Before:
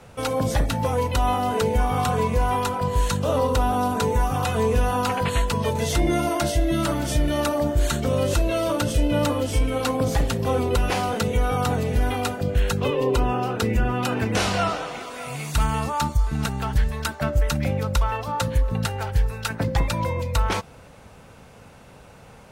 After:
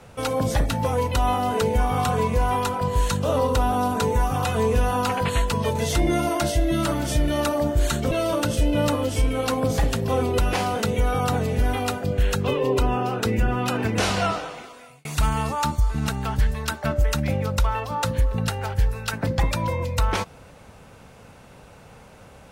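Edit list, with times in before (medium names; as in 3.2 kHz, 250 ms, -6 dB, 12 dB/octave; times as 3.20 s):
8.11–8.48 s: delete
14.60–15.42 s: fade out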